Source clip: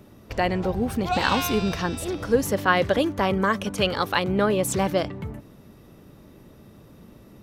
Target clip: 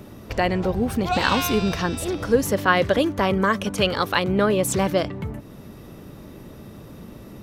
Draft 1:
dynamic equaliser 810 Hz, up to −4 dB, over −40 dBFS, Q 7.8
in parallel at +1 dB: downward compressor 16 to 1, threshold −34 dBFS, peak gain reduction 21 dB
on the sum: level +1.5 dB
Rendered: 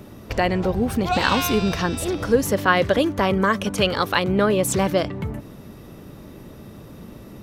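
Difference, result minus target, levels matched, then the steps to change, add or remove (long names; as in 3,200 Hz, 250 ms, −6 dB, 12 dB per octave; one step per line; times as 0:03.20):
downward compressor: peak gain reduction −8 dB
change: downward compressor 16 to 1, threshold −42.5 dBFS, peak gain reduction 29 dB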